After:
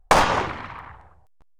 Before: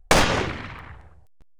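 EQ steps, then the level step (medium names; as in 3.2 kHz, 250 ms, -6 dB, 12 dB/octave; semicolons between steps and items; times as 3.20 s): peaking EQ 960 Hz +11 dB 1.3 oct; -4.5 dB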